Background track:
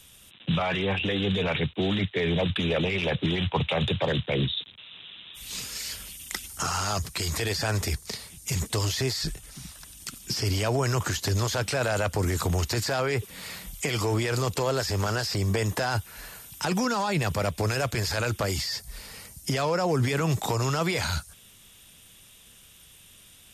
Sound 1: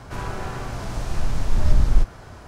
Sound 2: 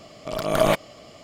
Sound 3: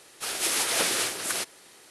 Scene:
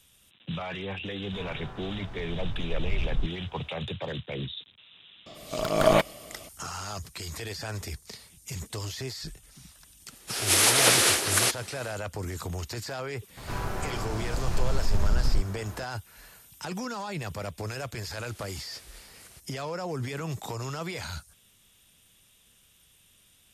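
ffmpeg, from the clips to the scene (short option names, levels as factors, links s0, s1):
-filter_complex "[1:a]asplit=2[s0][s1];[3:a]asplit=2[s2][s3];[0:a]volume=0.376[s4];[s0]acrossover=split=3300[s5][s6];[s6]acompressor=threshold=0.00158:ratio=4:attack=1:release=60[s7];[s5][s7]amix=inputs=2:normalize=0[s8];[2:a]highshelf=f=9400:g=-6.5[s9];[s2]dynaudnorm=f=260:g=3:m=6.68[s10];[s1]alimiter=level_in=3.76:limit=0.891:release=50:level=0:latency=1[s11];[s3]acompressor=threshold=0.02:ratio=2.5:attack=1.4:release=779:knee=1:detection=peak[s12];[s8]atrim=end=2.47,asetpts=PTS-STARTPTS,volume=0.251,afade=t=in:d=0.004:c=hsin,afade=t=out:st=2.466:d=0.004:c=hsin,adelay=1220[s13];[s9]atrim=end=1.23,asetpts=PTS-STARTPTS,volume=0.891,afade=t=in:d=0.004:c=hsin,afade=t=out:st=1.226:d=0.004:c=hsin,adelay=5260[s14];[s10]atrim=end=1.9,asetpts=PTS-STARTPTS,volume=0.531,afade=t=in:d=0.004:c=hsin,afade=t=out:st=1.896:d=0.004:c=hsin,adelay=10070[s15];[s11]atrim=end=2.47,asetpts=PTS-STARTPTS,volume=0.2,afade=t=in:d=0.004:c=hsin,afade=t=out:st=2.466:d=0.004:c=hsin,adelay=13370[s16];[s12]atrim=end=1.9,asetpts=PTS-STARTPTS,volume=0.15,afade=t=in:d=0.004:c=hsin,afade=t=out:st=1.896:d=0.004:c=hsin,adelay=792036S[s17];[s4][s13][s14][s15][s16][s17]amix=inputs=6:normalize=0"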